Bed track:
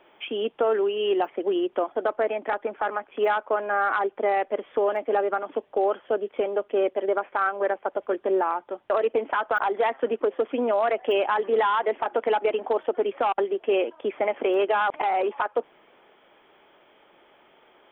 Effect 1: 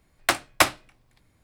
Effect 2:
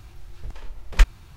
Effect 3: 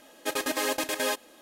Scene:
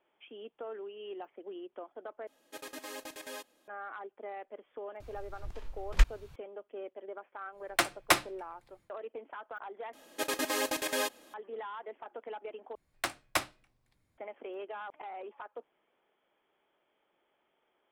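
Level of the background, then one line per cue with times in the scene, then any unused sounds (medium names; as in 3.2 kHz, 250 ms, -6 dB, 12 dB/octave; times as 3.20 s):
bed track -19.5 dB
2.27 s: replace with 3 -15.5 dB
5.00 s: add 2 -7.5 dB
7.50 s: add 1 -6.5 dB, fades 0.10 s + comb 5.8 ms, depth 42%
9.93 s: replace with 3 -3.5 dB
12.75 s: replace with 1 -12 dB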